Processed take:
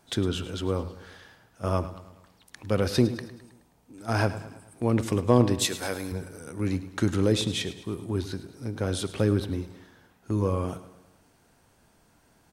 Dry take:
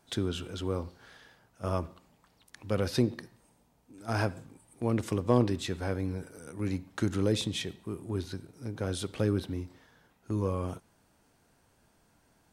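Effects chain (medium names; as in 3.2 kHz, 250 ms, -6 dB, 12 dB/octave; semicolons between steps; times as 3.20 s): 5.59–6.12 s: RIAA curve recording; feedback delay 106 ms, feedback 51%, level -14.5 dB; trim +4.5 dB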